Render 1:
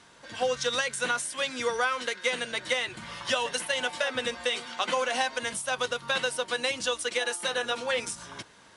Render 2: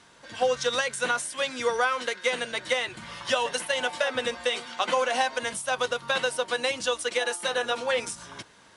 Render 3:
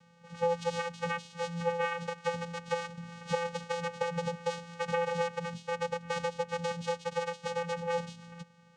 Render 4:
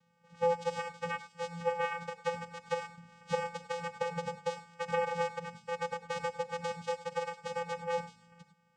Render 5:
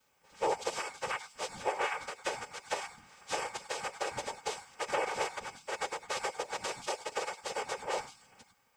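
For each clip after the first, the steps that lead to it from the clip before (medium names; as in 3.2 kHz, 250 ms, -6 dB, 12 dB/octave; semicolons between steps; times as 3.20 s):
dynamic bell 690 Hz, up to +4 dB, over -36 dBFS, Q 0.71
vocoder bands 4, square 170 Hz; trim -5.5 dB
gated-style reverb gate 120 ms rising, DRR 6.5 dB; upward expansion 1.5:1, over -46 dBFS
RIAA curve recording; whisper effect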